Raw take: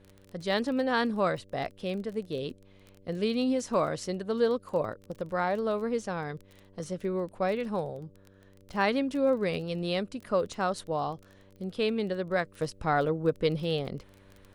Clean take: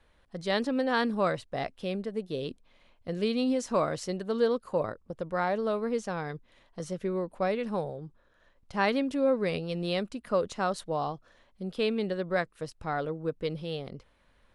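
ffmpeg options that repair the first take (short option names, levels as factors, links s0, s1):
-af "adeclick=t=4,bandreject=f=96.9:t=h:w=4,bandreject=f=193.8:t=h:w=4,bandreject=f=290.7:t=h:w=4,bandreject=f=387.6:t=h:w=4,bandreject=f=484.5:t=h:w=4,bandreject=f=581.4:t=h:w=4,asetnsamples=n=441:p=0,asendcmd='12.45 volume volume -5.5dB',volume=1"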